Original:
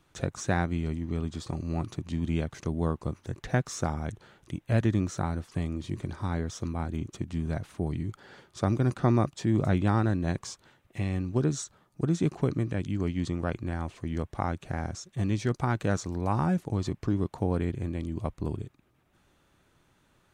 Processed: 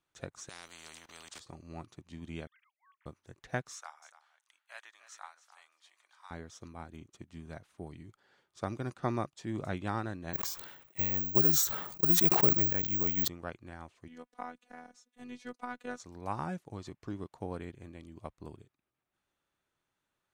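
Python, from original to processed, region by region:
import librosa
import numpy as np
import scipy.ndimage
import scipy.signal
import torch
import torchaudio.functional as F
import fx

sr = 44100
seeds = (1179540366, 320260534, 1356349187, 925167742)

y = fx.chain(x, sr, fx.highpass(hz=62.0, slope=6),
    fx.level_steps(step_db=18),
    fx.spectral_comp(ratio=4.0), at=(0.49, 1.4))
y = fx.chain(y, sr, fx.sine_speech(),
    fx.bessel_highpass(hz=2300.0, order=8),
    fx.band_squash(depth_pct=40), at=(2.47, 3.06))
y = fx.chain(y, sr, fx.highpass(hz=890.0, slope=24),
    fx.echo_single(ms=291, db=-10.0), at=(3.73, 6.31))
y = fx.chain(y, sr, fx.resample_bad(factor=2, down='none', up='zero_stuff'),
    fx.sustainer(db_per_s=36.0), at=(10.33, 13.28))
y = fx.chain(y, sr, fx.highpass(hz=130.0, slope=24),
    fx.dynamic_eq(hz=6200.0, q=1.4, threshold_db=-55.0, ratio=4.0, max_db=-4),
    fx.robotise(hz=247.0), at=(14.08, 16.0))
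y = fx.low_shelf(y, sr, hz=350.0, db=-10.0)
y = fx.upward_expand(y, sr, threshold_db=-52.0, expansion=1.5)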